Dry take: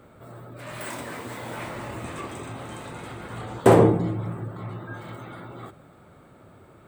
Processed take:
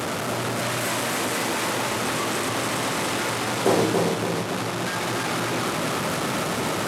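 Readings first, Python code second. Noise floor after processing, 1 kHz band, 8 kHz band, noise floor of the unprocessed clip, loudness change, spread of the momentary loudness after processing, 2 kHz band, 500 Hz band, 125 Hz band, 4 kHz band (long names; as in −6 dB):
−28 dBFS, +5.5 dB, +15.5 dB, −52 dBFS, +1.5 dB, 4 LU, +11.5 dB, 0.0 dB, −2.0 dB, +17.0 dB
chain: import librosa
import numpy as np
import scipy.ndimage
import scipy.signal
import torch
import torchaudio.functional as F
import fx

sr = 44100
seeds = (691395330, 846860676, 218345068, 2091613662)

y = fx.delta_mod(x, sr, bps=64000, step_db=-15.0)
y = scipy.signal.sosfilt(scipy.signal.butter(2, 150.0, 'highpass', fs=sr, output='sos'), y)
y = fx.echo_feedback(y, sr, ms=282, feedback_pct=51, wet_db=-3.5)
y = y * librosa.db_to_amplitude(-5.5)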